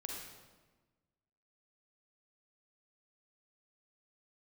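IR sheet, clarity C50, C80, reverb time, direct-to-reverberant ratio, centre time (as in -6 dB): -0.5 dB, 3.0 dB, 1.3 s, -1.0 dB, 69 ms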